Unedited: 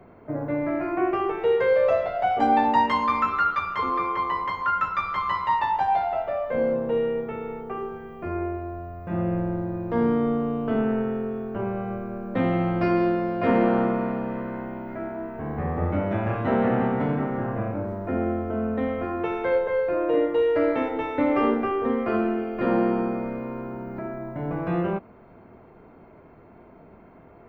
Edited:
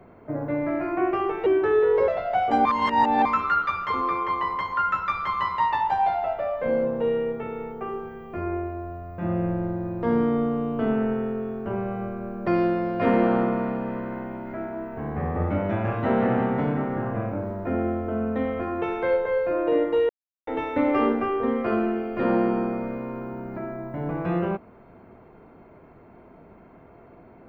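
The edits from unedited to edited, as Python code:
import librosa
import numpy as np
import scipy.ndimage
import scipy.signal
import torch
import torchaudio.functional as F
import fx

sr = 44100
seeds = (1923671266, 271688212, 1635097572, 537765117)

y = fx.edit(x, sr, fx.speed_span(start_s=1.46, length_s=0.51, speed=0.82),
    fx.reverse_span(start_s=2.54, length_s=0.6),
    fx.cut(start_s=12.36, length_s=0.53),
    fx.silence(start_s=20.51, length_s=0.38), tone=tone)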